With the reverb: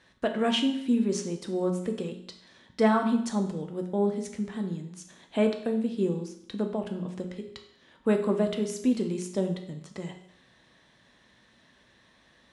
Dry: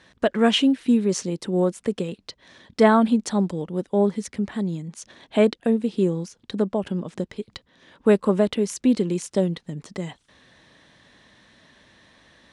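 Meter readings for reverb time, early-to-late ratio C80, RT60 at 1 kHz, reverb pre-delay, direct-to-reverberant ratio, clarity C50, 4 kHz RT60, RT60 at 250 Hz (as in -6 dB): 0.70 s, 11.5 dB, 0.75 s, 5 ms, 4.0 dB, 8.5 dB, 0.70 s, 0.75 s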